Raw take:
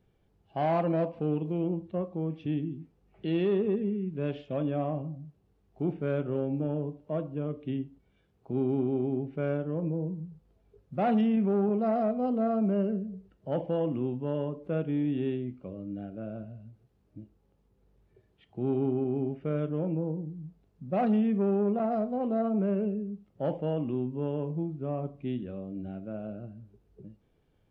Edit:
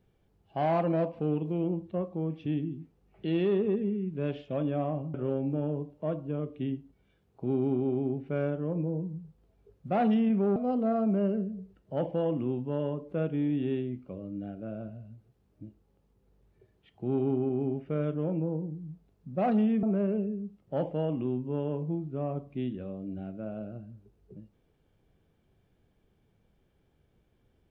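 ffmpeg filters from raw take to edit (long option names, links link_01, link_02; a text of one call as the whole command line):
ffmpeg -i in.wav -filter_complex "[0:a]asplit=4[link_01][link_02][link_03][link_04];[link_01]atrim=end=5.142[link_05];[link_02]atrim=start=6.208:end=11.632[link_06];[link_03]atrim=start=12.108:end=21.382[link_07];[link_04]atrim=start=22.508[link_08];[link_05][link_06]acrossfade=duration=0.004:curve1=hsin:curve2=hsin[link_09];[link_09][link_07]acrossfade=duration=0.004:curve1=hsin:curve2=hsin[link_10];[link_10][link_08]acrossfade=duration=0.004:curve1=hsin:curve2=hsin" out.wav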